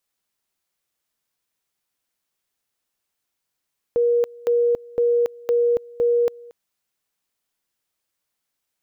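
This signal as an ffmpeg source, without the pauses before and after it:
-f lavfi -i "aevalsrc='pow(10,(-15-23.5*gte(mod(t,0.51),0.28))/20)*sin(2*PI*476*t)':d=2.55:s=44100"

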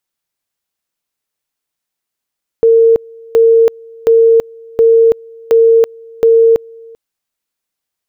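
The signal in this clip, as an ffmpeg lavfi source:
-f lavfi -i "aevalsrc='pow(10,(-4-27.5*gte(mod(t,0.72),0.33))/20)*sin(2*PI*456*t)':d=4.32:s=44100"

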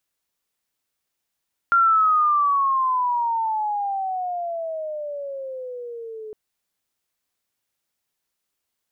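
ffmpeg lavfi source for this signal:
-f lavfi -i "aevalsrc='pow(10,(-13-19.5*t/4.61)/20)*sin(2*PI*1390*4.61/(-20.5*log(2)/12)*(exp(-20.5*log(2)/12*t/4.61)-1))':d=4.61:s=44100"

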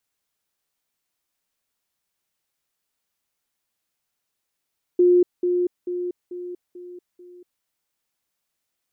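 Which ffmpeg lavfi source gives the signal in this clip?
-f lavfi -i "aevalsrc='pow(10,(-12-6*floor(t/0.44))/20)*sin(2*PI*356*t)*clip(min(mod(t,0.44),0.24-mod(t,0.44))/0.005,0,1)':d=2.64:s=44100"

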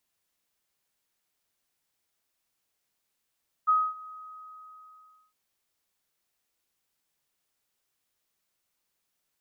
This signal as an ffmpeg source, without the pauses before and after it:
-f lavfi -i "aevalsrc='0.126*sin(2*PI*1260*t)':d=1.66:s=44100,afade=t=in:d=0.021,afade=t=out:st=0.021:d=0.245:silence=0.075,afade=t=out:st=0.42:d=1.24"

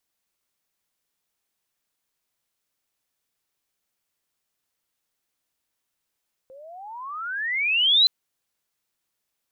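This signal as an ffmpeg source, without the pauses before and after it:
-f lavfi -i "aevalsrc='pow(10,(-12.5+30*(t/1.57-1))/20)*sin(2*PI*515*1.57/(36*log(2)/12)*(exp(36*log(2)/12*t/1.57)-1))':d=1.57:s=44100"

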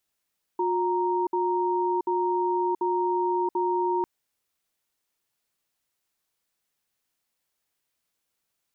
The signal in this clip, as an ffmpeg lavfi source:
-f lavfi -i "aevalsrc='0.0562*(sin(2*PI*359*t)+sin(2*PI*932*t))*clip(min(mod(t,0.74),0.68-mod(t,0.74))/0.005,0,1)':d=3.45:s=44100"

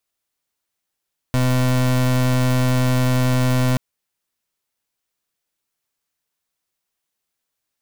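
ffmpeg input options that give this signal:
-f lavfi -i "aevalsrc='0.141*(2*lt(mod(127*t,1),0.31)-1)':d=2.43:s=44100"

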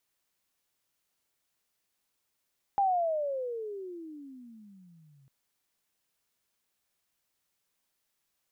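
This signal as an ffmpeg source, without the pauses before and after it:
-f lavfi -i "aevalsrc='pow(10,(-22-36*t/2.5)/20)*sin(2*PI*812*2.5/(-31.5*log(2)/12)*(exp(-31.5*log(2)/12*t/2.5)-1))':d=2.5:s=44100"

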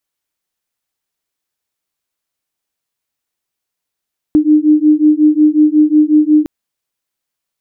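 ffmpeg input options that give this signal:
-f lavfi -i "aevalsrc='0.335*(sin(2*PI*301*t)+sin(2*PI*306.5*t))':d=2.11:s=44100"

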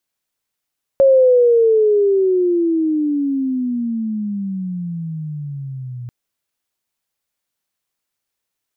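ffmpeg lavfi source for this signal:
-f lavfi -i "aevalsrc='pow(10,(-7-19.5*t/5.09)/20)*sin(2*PI*550*5.09/log(120/550)*(exp(log(120/550)*t/5.09)-1))':d=5.09:s=44100"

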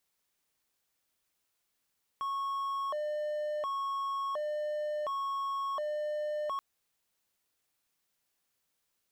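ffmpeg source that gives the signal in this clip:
-f lavfi -i "aevalsrc='0.0335*(1-4*abs(mod((850.5*t+249.5/0.7*(0.5-abs(mod(0.7*t,1)-0.5)))+0.25,1)-0.5))':d=4.38:s=44100"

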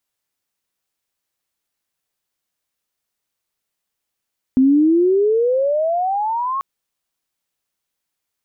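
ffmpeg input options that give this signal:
-f lavfi -i "aevalsrc='pow(10,(-9-10*t/2.04)/20)*sin(2*PI*255*2.04/(25.5*log(2)/12)*(exp(25.5*log(2)/12*t/2.04)-1))':d=2.04:s=44100"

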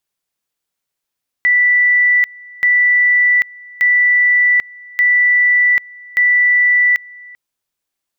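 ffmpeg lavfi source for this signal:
-f lavfi -i "aevalsrc='pow(10,(-8.5-25*gte(mod(t,1.18),0.79))/20)*sin(2*PI*1970*t)':d=5.9:s=44100"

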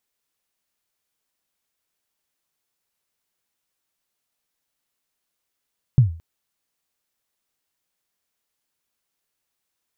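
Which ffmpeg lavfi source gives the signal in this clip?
-f lavfi -i "aevalsrc='0.501*pow(10,-3*t/0.38)*sin(2*PI*(140*0.123/log(82/140)*(exp(log(82/140)*min(t,0.123)/0.123)-1)+82*max(t-0.123,0)))':d=0.22:s=44100"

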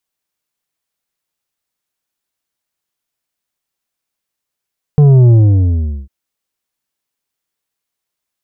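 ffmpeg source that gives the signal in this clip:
-f lavfi -i "aevalsrc='0.596*clip((1.1-t)/0.77,0,1)*tanh(2.37*sin(2*PI*150*1.1/log(65/150)*(exp(log(65/150)*t/1.1)-1)))/tanh(2.37)':d=1.1:s=44100"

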